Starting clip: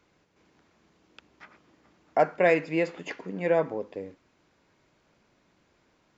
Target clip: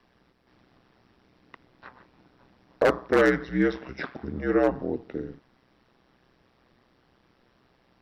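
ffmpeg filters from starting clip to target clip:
-filter_complex "[0:a]acrossover=split=220|880|2000[s0][s1][s2][s3];[s0]alimiter=level_in=6.31:limit=0.0631:level=0:latency=1,volume=0.158[s4];[s4][s1][s2][s3]amix=inputs=4:normalize=0,asetrate=33957,aresample=44100,aeval=exprs='val(0)*sin(2*PI*63*n/s)':c=same,aeval=exprs='0.133*(abs(mod(val(0)/0.133+3,4)-2)-1)':c=same,volume=2"

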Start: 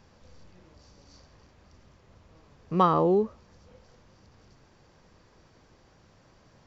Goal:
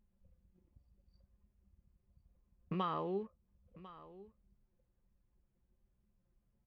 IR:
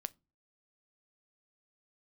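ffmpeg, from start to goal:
-af "anlmdn=0.158,highpass=f=240:p=1,aemphasis=mode=reproduction:type=bsi,acompressor=threshold=0.0178:ratio=8,lowpass=f=2900:t=q:w=1.8,flanger=delay=4.8:depth=2.2:regen=73:speed=0.67:shape=sinusoidal,crystalizer=i=8:c=0,aecho=1:1:1048:0.133,volume=1.19"

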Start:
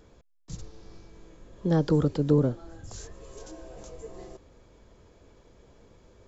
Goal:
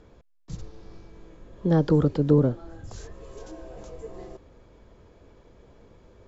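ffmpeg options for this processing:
-af "aemphasis=mode=reproduction:type=50fm,volume=1.33"

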